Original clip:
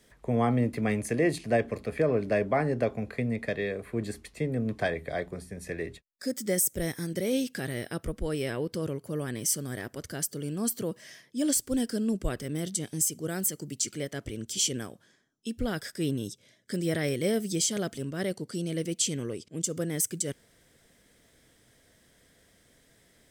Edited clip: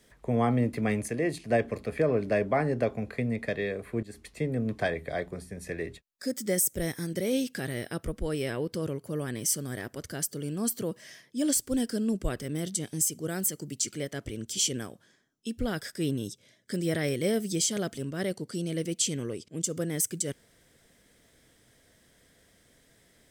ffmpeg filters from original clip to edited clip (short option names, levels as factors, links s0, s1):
-filter_complex "[0:a]asplit=4[s0][s1][s2][s3];[s0]atrim=end=1.082[s4];[s1]atrim=start=1.078:end=1.502,asetpts=PTS-STARTPTS,volume=0.668[s5];[s2]atrim=start=1.498:end=4.03,asetpts=PTS-STARTPTS,afade=t=out:st=2.528:d=0.004:c=hsin:silence=0.133352[s6];[s3]atrim=start=4.03,asetpts=PTS-STARTPTS,afade=t=in:d=0.26:silence=0.133352[s7];[s4][s5]acrossfade=d=0.004:c1=hsin:c2=hsin[s8];[s6][s7]concat=n=2:v=0:a=1[s9];[s8][s9]acrossfade=d=0.004:c1=hsin:c2=hsin"